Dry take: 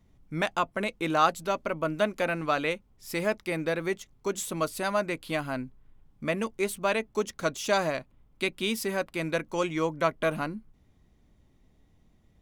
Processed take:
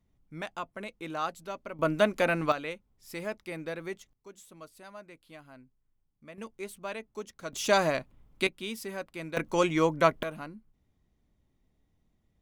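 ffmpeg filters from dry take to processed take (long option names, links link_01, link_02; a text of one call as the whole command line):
ffmpeg -i in.wav -af "asetnsamples=nb_out_samples=441:pad=0,asendcmd='1.79 volume volume 2dB;2.52 volume volume -8dB;4.13 volume volume -19.5dB;6.38 volume volume -11dB;7.53 volume volume 1.5dB;8.47 volume volume -8dB;9.37 volume volume 3dB;10.23 volume volume -9.5dB',volume=-10dB" out.wav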